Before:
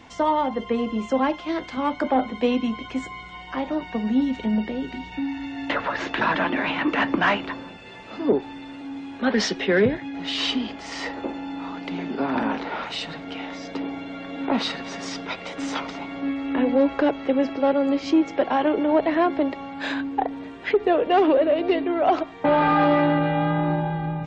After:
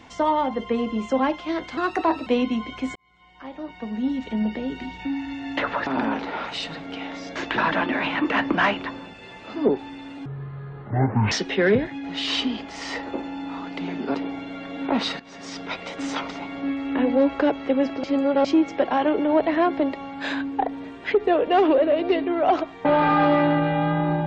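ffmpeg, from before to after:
ffmpeg -i in.wav -filter_complex "[0:a]asplit=12[link_01][link_02][link_03][link_04][link_05][link_06][link_07][link_08][link_09][link_10][link_11][link_12];[link_01]atrim=end=1.774[link_13];[link_02]atrim=start=1.77:end=2.39,asetpts=PTS-STARTPTS,asetrate=55125,aresample=44100[link_14];[link_03]atrim=start=2.386:end=3.08,asetpts=PTS-STARTPTS,afade=type=out:start_time=0.69:duration=0.004:curve=hsin[link_15];[link_04]atrim=start=3.08:end=5.992,asetpts=PTS-STARTPTS,afade=type=in:duration=1.73[link_16];[link_05]atrim=start=12.248:end=13.742[link_17];[link_06]atrim=start=5.988:end=8.894[link_18];[link_07]atrim=start=8.89:end=9.42,asetpts=PTS-STARTPTS,asetrate=22050,aresample=44100[link_19];[link_08]atrim=start=9.416:end=12.252[link_20];[link_09]atrim=start=13.738:end=14.79,asetpts=PTS-STARTPTS,afade=type=out:start_time=1.048:duration=0.004:curve=hsin:silence=0.141254[link_21];[link_10]atrim=start=14.79:end=17.632,asetpts=PTS-STARTPTS,afade=type=in:duration=0.52:silence=0.141254[link_22];[link_11]atrim=start=17.628:end=18.042,asetpts=PTS-STARTPTS,areverse[link_23];[link_12]atrim=start=18.038[link_24];[link_13][link_14]acrossfade=duration=0.004:curve1=hsin:curve2=hsin[link_25];[link_15][link_16]concat=n=2:v=0:a=1[link_26];[link_25][link_26]acrossfade=duration=0.004:curve1=hsin:curve2=hsin[link_27];[link_27][link_17]acrossfade=duration=0.004:curve1=hsin:curve2=hsin[link_28];[link_28][link_18]acrossfade=duration=0.004:curve1=hsin:curve2=hsin[link_29];[link_29][link_19]acrossfade=duration=0.004:curve1=hsin:curve2=hsin[link_30];[link_30][link_20]acrossfade=duration=0.004:curve1=hsin:curve2=hsin[link_31];[link_21][link_22]concat=n=2:v=0:a=1[link_32];[link_31][link_32]acrossfade=duration=0.004:curve1=hsin:curve2=hsin[link_33];[link_33][link_23]acrossfade=duration=0.004:curve1=hsin:curve2=hsin[link_34];[link_34][link_24]acrossfade=duration=0.004:curve1=hsin:curve2=hsin" out.wav

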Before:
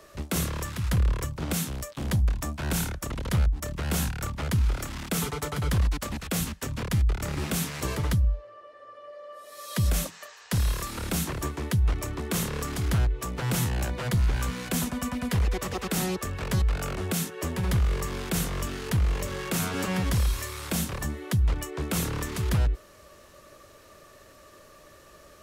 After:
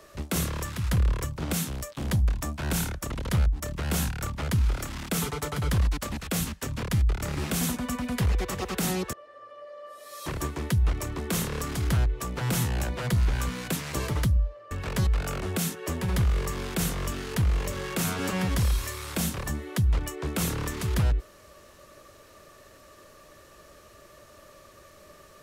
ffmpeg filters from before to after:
ffmpeg -i in.wav -filter_complex "[0:a]asplit=6[link_01][link_02][link_03][link_04][link_05][link_06];[link_01]atrim=end=7.612[link_07];[link_02]atrim=start=14.738:end=16.262[link_08];[link_03]atrim=start=8.588:end=9.722[link_09];[link_04]atrim=start=11.268:end=14.742[link_10];[link_05]atrim=start=7.608:end=8.592[link_11];[link_06]atrim=start=16.258[link_12];[link_07][link_08]acrossfade=duration=0.004:curve1=hsin:curve2=hsin[link_13];[link_13][link_09]acrossfade=duration=0.004:curve1=hsin:curve2=hsin[link_14];[link_14][link_10]acrossfade=duration=0.004:curve1=hsin:curve2=hsin[link_15];[link_15][link_11]acrossfade=duration=0.004:curve1=hsin:curve2=hsin[link_16];[link_16][link_12]acrossfade=duration=0.004:curve1=hsin:curve2=hsin" out.wav

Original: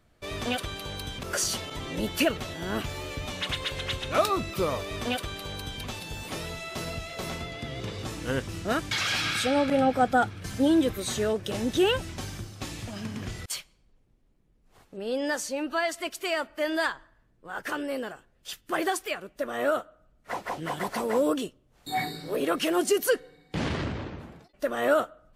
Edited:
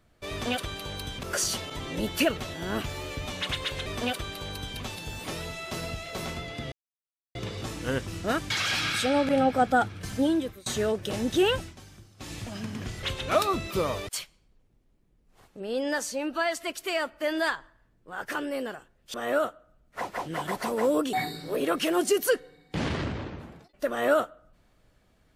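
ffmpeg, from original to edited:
ffmpeg -i in.wav -filter_complex "[0:a]asplit=10[link_01][link_02][link_03][link_04][link_05][link_06][link_07][link_08][link_09][link_10];[link_01]atrim=end=3.862[link_11];[link_02]atrim=start=4.898:end=7.76,asetpts=PTS-STARTPTS,afade=type=out:start_time=2.858:duration=0.004:curve=hsin,apad=pad_dur=0.63[link_12];[link_03]atrim=start=7.76:end=11.07,asetpts=PTS-STARTPTS,afade=type=in:duration=0.004:curve=hsin,afade=type=out:start_time=2.79:duration=0.52:silence=0.0668344[link_13];[link_04]atrim=start=11.07:end=12.16,asetpts=PTS-STARTPTS,afade=type=in:duration=0.004:curve=hsin:silence=0.0668344,afade=type=out:start_time=0.93:duration=0.16:silence=0.237137[link_14];[link_05]atrim=start=12.16:end=12.58,asetpts=PTS-STARTPTS,volume=-12.5dB[link_15];[link_06]atrim=start=12.58:end=13.442,asetpts=PTS-STARTPTS,afade=type=in:duration=0.16:silence=0.237137[link_16];[link_07]atrim=start=3.858:end=4.902[link_17];[link_08]atrim=start=13.438:end=18.512[link_18];[link_09]atrim=start=19.458:end=21.452[link_19];[link_10]atrim=start=21.928[link_20];[link_12][link_13][link_14][link_15][link_16]concat=n=5:v=0:a=1[link_21];[link_11][link_21]acrossfade=duration=0.004:curve1=hsin:curve2=hsin[link_22];[link_22][link_17]acrossfade=duration=0.004:curve1=hsin:curve2=hsin[link_23];[link_23][link_18]acrossfade=duration=0.004:curve1=hsin:curve2=hsin[link_24];[link_24][link_19]acrossfade=duration=0.004:curve1=hsin:curve2=hsin[link_25];[link_25][link_20]acrossfade=duration=0.004:curve1=hsin:curve2=hsin" out.wav

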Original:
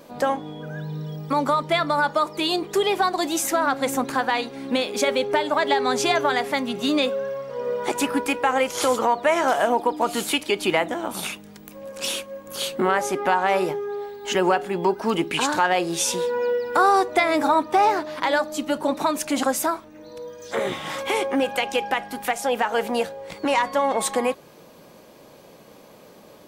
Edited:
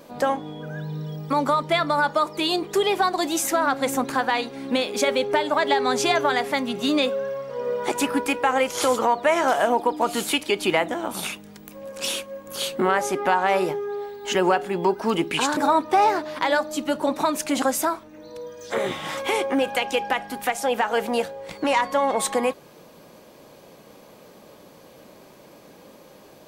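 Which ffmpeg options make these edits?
ffmpeg -i in.wav -filter_complex "[0:a]asplit=2[link_01][link_02];[link_01]atrim=end=15.572[link_03];[link_02]atrim=start=17.378[link_04];[link_03][link_04]acrossfade=duration=0.004:curve1=hsin:curve2=hsin" out.wav

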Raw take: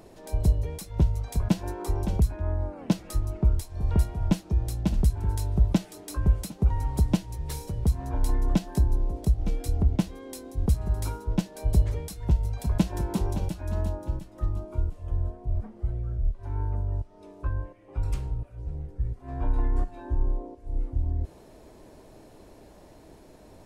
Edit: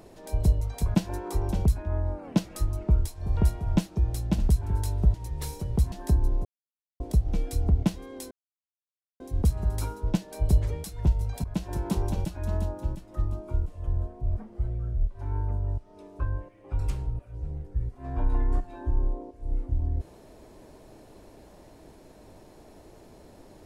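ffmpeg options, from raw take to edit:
ffmpeg -i in.wav -filter_complex "[0:a]asplit=7[link_01][link_02][link_03][link_04][link_05][link_06][link_07];[link_01]atrim=end=0.612[link_08];[link_02]atrim=start=1.148:end=5.682[link_09];[link_03]atrim=start=7.218:end=8.002[link_10];[link_04]atrim=start=8.598:end=9.13,asetpts=PTS-STARTPTS,afade=type=out:start_time=0.528:duration=0.004:curve=hsin,apad=pad_dur=0.55[link_11];[link_05]atrim=start=9.13:end=10.44,asetpts=PTS-STARTPTS,afade=type=in:duration=0.004:curve=hsin,afade=type=out:start_time=1.306:duration=0.004:curve=hsin,apad=pad_dur=0.89[link_12];[link_06]atrim=start=10.44:end=12.68,asetpts=PTS-STARTPTS,afade=type=in:duration=0.004:curve=hsin,afade=type=out:start_time=2.236:duration=0.004:curve=hsin:silence=0.16788[link_13];[link_07]atrim=start=12.68,asetpts=PTS-STARTPTS,afade=type=in:duration=0.56:curve=qsin:silence=0.16788[link_14];[link_08][link_09]acrossfade=duration=0.004:curve1=hsin:curve2=hsin[link_15];[link_15][link_10]acrossfade=duration=0.004:curve1=hsin:curve2=hsin[link_16];[link_11][link_12][link_13][link_14]concat=n=4:v=0:a=1[link_17];[link_16][link_17]acrossfade=duration=0.004:curve1=hsin:curve2=hsin" out.wav

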